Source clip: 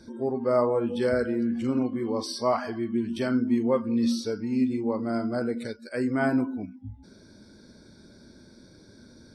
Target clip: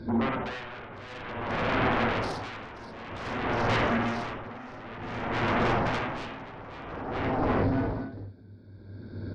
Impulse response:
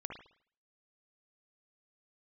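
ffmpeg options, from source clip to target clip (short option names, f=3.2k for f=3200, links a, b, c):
-filter_complex "[0:a]acompressor=threshold=-27dB:ratio=5,aecho=1:1:530|954|1293|1565|1782:0.631|0.398|0.251|0.158|0.1,agate=range=-8dB:threshold=-43dB:ratio=16:detection=peak,aresample=11025,asoftclip=type=tanh:threshold=-28.5dB,aresample=44100,lowpass=f=1.2k:p=1,equalizer=f=99:w=4.7:g=14.5,aeval=exprs='0.0794*sin(PI/2*6.31*val(0)/0.0794)':c=same[a];[1:a]atrim=start_sample=2205,atrim=end_sample=4410[b];[a][b]afir=irnorm=-1:irlink=0,aeval=exprs='val(0)*pow(10,-18*(0.5-0.5*cos(2*PI*0.53*n/s))/20)':c=same,volume=2dB"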